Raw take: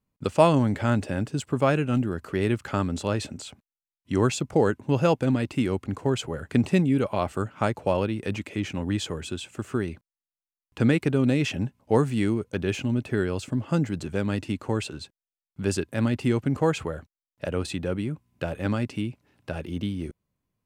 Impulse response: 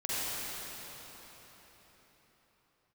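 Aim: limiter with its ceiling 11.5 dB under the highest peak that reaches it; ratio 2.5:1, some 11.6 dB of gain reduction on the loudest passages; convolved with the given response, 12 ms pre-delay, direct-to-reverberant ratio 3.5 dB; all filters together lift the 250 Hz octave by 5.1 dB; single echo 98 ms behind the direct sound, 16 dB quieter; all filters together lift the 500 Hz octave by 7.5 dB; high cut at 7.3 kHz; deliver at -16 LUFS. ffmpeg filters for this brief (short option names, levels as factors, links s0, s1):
-filter_complex "[0:a]lowpass=7300,equalizer=f=250:t=o:g=4,equalizer=f=500:t=o:g=8,acompressor=threshold=0.0501:ratio=2.5,alimiter=limit=0.0891:level=0:latency=1,aecho=1:1:98:0.158,asplit=2[s0][s1];[1:a]atrim=start_sample=2205,adelay=12[s2];[s1][s2]afir=irnorm=-1:irlink=0,volume=0.251[s3];[s0][s3]amix=inputs=2:normalize=0,volume=5.62"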